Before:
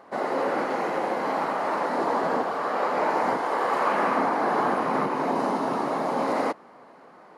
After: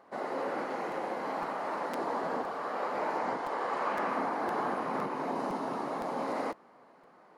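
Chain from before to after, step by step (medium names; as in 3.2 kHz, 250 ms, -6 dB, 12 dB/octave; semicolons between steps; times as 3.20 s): 3.17–4.09 s: low-pass 8.7 kHz 12 dB/octave; crackling interface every 0.51 s, samples 256, repeat, from 0.91 s; trim -8.5 dB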